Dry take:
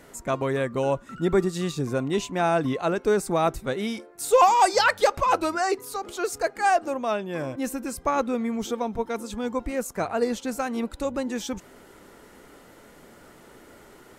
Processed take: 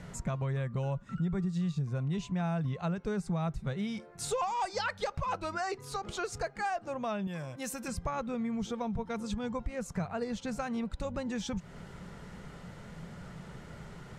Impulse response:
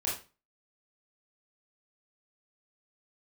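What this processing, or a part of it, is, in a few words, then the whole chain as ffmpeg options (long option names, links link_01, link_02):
jukebox: -filter_complex "[0:a]lowpass=6500,lowshelf=frequency=220:width_type=q:width=3:gain=9,acompressor=threshold=-33dB:ratio=4,asettb=1/sr,asplit=3[link_01][link_02][link_03];[link_01]atrim=end=7.274[link_04];[link_02]atrim=start=7.27:end=7.88,asetpts=PTS-STARTPTS,afade=type=in:duration=0.004:curve=qsin,afade=type=out:start_time=0.606:duration=0.004:curve=qsin,aemphasis=mode=production:type=bsi[link_05];[link_03]atrim=start=7.876[link_06];[link_04][link_05]acrossfade=duration=0.004:curve1=hsin:curve2=qsin[link_07];[link_07][link_06]acrossfade=duration=0.004:curve1=qsin:curve2=hsin"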